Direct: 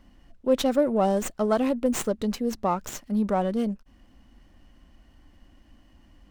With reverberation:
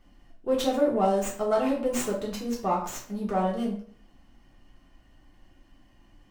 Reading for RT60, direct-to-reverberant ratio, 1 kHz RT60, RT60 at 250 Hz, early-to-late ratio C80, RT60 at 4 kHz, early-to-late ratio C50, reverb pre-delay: 0.50 s, -4.0 dB, 0.55 s, 0.50 s, 10.5 dB, 0.40 s, 6.5 dB, 3 ms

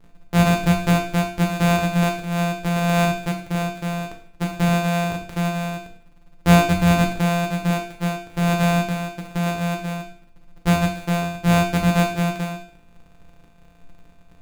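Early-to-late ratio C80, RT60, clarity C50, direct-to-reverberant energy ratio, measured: 12.0 dB, 0.50 s, 8.0 dB, 1.0 dB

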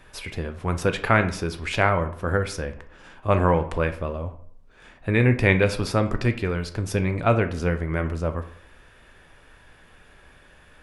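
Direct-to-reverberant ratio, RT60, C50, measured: 8.0 dB, 0.65 s, 12.5 dB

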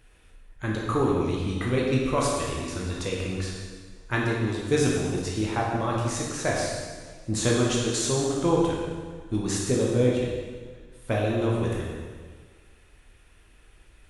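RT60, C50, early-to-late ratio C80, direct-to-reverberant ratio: 1.6 s, 0.0 dB, 2.0 dB, -4.0 dB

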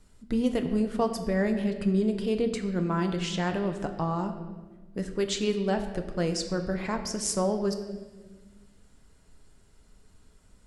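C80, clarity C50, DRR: 10.0 dB, 9.0 dB, 5.5 dB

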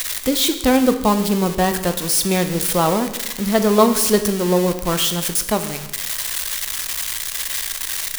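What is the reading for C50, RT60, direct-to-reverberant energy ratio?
10.5 dB, 1.1 s, 8.0 dB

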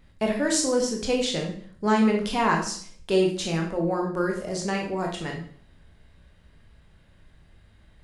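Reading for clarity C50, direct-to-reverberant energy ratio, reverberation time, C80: 6.0 dB, 0.0 dB, 0.55 s, 10.5 dB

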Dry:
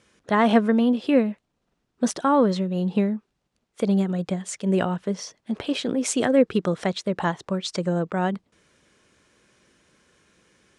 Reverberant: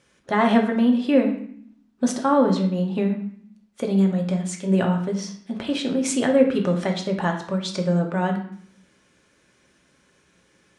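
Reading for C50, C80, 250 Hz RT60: 8.0 dB, 11.0 dB, 0.90 s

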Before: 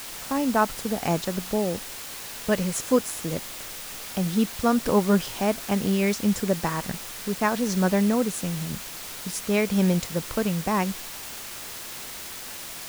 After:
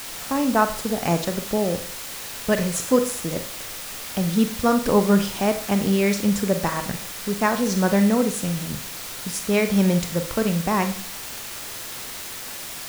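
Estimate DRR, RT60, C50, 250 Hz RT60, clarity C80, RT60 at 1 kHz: 7.5 dB, 0.45 s, 11.5 dB, 0.40 s, 15.5 dB, 0.45 s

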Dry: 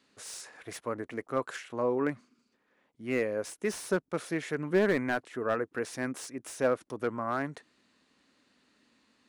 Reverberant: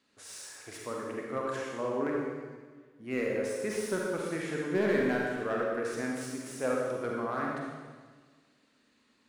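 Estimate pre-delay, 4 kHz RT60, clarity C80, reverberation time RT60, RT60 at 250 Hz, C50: 38 ms, 1.4 s, 1.0 dB, 1.5 s, 1.7 s, -1.5 dB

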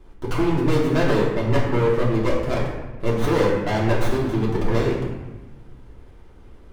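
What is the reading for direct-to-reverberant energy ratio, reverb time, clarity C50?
-6.0 dB, 1.1 s, 2.5 dB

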